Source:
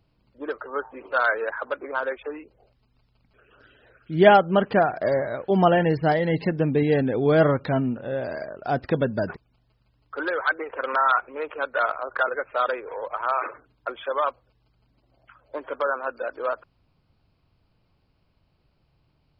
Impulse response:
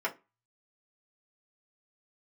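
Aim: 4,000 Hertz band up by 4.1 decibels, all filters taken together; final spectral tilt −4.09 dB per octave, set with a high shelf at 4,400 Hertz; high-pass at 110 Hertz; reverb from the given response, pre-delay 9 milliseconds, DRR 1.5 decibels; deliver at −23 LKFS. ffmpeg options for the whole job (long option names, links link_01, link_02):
-filter_complex "[0:a]highpass=110,equalizer=frequency=4000:width_type=o:gain=3.5,highshelf=frequency=4400:gain=4.5,asplit=2[link_01][link_02];[1:a]atrim=start_sample=2205,adelay=9[link_03];[link_02][link_03]afir=irnorm=-1:irlink=0,volume=-9dB[link_04];[link_01][link_04]amix=inputs=2:normalize=0,volume=-1dB"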